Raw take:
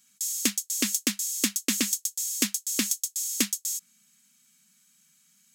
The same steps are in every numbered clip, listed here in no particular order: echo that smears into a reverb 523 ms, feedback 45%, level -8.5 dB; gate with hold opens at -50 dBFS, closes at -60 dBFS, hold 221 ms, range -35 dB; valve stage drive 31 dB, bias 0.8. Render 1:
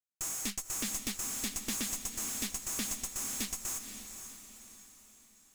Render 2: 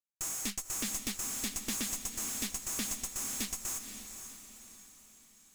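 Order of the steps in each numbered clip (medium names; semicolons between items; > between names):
valve stage > gate with hold > echo that smears into a reverb; valve stage > echo that smears into a reverb > gate with hold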